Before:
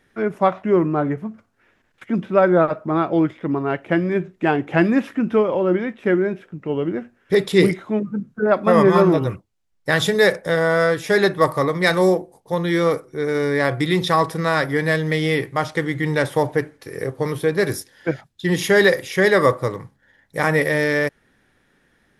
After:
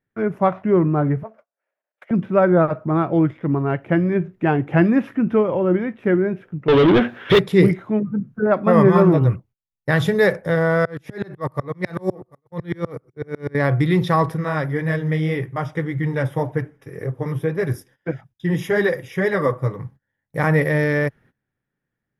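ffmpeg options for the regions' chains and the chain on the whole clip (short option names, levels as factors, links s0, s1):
-filter_complex "[0:a]asettb=1/sr,asplit=3[s0][s1][s2];[s0]atrim=end=1.234[s3];[s1]atrim=start=1.23:end=2.11,asetpts=PTS-STARTPTS,afade=t=in:d=0.004:c=qsin,afade=t=out:st=0.876:d=0.004:c=qsin,equalizer=f=3200:w=0.36:g=2.5,aeval=exprs='(tanh(10*val(0)+0.75)-tanh(0.75))/10':c=same,highpass=f=600:t=q:w=5.7[s4];[s2]atrim=start=2.106[s5];[s3][s4]acrossfade=d=0.004:c1=hsin:c2=qsin[s6];[s6][s5]acrossfade=d=0.004:c1=qsin:c2=hsin,asettb=1/sr,asplit=3[s7][s8][s9];[s7]atrim=end=6.684[s10];[s8]atrim=start=6.68:end=7.39,asetpts=PTS-STARTPTS,afade=t=in:d=0.004:c=qsin,afade=t=out:st=0.706:d=0.004:c=qsin,asplit=2[s11][s12];[s12]highpass=f=720:p=1,volume=44.7,asoftclip=type=tanh:threshold=0.531[s13];[s11][s13]amix=inputs=2:normalize=0,lowpass=f=2900:p=1,volume=0.501,equalizer=f=3500:t=o:w=0.53:g=15[s14];[s9]atrim=start=7.386[s15];[s10][s14]acrossfade=d=0.004:c1=hsin:c2=qsin[s16];[s16][s15]acrossfade=d=0.004:c1=qsin:c2=hsin,asettb=1/sr,asplit=3[s17][s18][s19];[s17]atrim=end=10.854[s20];[s18]atrim=start=10.85:end=13.55,asetpts=PTS-STARTPTS,afade=t=in:d=0.004:c=qsin,afade=t=out:st=2.696:d=0.004:c=qsin,aecho=1:1:743:0.0631,atrim=end_sample=119070,aeval=exprs='val(0)*pow(10,-36*if(lt(mod(-8*n/s,1),2*abs(-8)/1000),1-mod(-8*n/s,1)/(2*abs(-8)/1000),(mod(-8*n/s,1)-2*abs(-8)/1000)/(1-2*abs(-8)/1000))/20)':c=same[s21];[s19]atrim=start=13.546[s22];[s20][s21]acrossfade=d=0.004:c1=hsin:c2=qsin[s23];[s23][s22]acrossfade=d=0.004:c1=qsin:c2=hsin,asettb=1/sr,asplit=3[s24][s25][s26];[s24]atrim=end=14.354[s27];[s25]atrim=start=14.35:end=19.79,asetpts=PTS-STARTPTS,afade=t=in:d=0.004:c=qsin,afade=t=out:st=5.436:d=0.004:c=qsin,asuperstop=centerf=4300:order=20:qfactor=5.7,flanger=delay=0.5:depth=7.2:regen=-36:speed=1.8:shape=triangular[s28];[s26]atrim=start=19.786[s29];[s27][s28]acrossfade=d=0.004:c1=hsin:c2=qsin[s30];[s30][s29]acrossfade=d=0.004:c1=qsin:c2=hsin,agate=range=0.0891:threshold=0.00398:ratio=16:detection=peak,equalizer=f=125:t=o:w=1:g=10,equalizer=f=4000:t=o:w=1:g=-6,equalizer=f=8000:t=o:w=1:g=-11,volume=0.891"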